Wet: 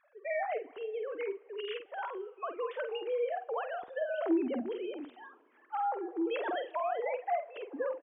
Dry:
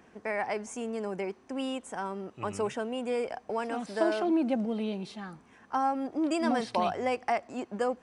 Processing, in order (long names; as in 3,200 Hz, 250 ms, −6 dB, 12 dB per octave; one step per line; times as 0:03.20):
three sine waves on the formant tracks
in parallel at +0.5 dB: compressor whose output falls as the input rises −33 dBFS, ratio −1
on the sum: high-frequency loss of the air 57 metres
double-tracking delay 48 ms −8 dB
on a send at −22 dB: convolution reverb RT60 2.7 s, pre-delay 24 ms
on the sum: one half of a high-frequency compander decoder only
level −8.5 dB